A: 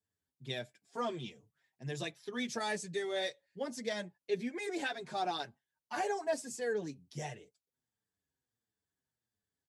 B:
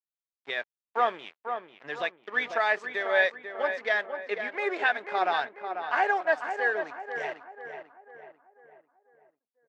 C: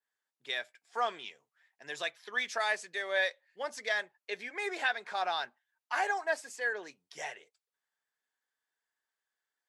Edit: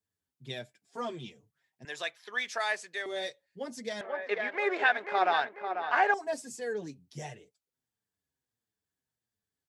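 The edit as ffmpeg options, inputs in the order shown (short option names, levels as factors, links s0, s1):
-filter_complex "[0:a]asplit=3[s0][s1][s2];[s0]atrim=end=1.852[s3];[2:a]atrim=start=1.848:end=3.062[s4];[s1]atrim=start=3.058:end=4.012[s5];[1:a]atrim=start=4.008:end=6.142[s6];[s2]atrim=start=6.138[s7];[s3][s4]acrossfade=d=0.004:c1=hsin:c2=hsin[s8];[s8][s5]acrossfade=d=0.004:c1=hsin:c2=hsin[s9];[s9][s6]acrossfade=d=0.004:c1=hsin:c2=hsin[s10];[s10][s7]acrossfade=d=0.004:c1=hsin:c2=hsin"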